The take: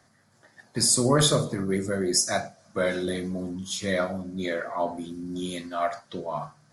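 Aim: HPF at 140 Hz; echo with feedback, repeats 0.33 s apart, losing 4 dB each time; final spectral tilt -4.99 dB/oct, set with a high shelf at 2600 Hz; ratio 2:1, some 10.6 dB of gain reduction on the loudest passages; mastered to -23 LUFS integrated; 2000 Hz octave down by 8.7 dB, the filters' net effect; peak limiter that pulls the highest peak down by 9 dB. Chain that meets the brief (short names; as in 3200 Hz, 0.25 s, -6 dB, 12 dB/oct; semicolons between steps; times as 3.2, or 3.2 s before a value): HPF 140 Hz; bell 2000 Hz -8 dB; high shelf 2600 Hz -9 dB; compressor 2:1, threshold -38 dBFS; limiter -30 dBFS; feedback echo 0.33 s, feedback 63%, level -4 dB; gain +14.5 dB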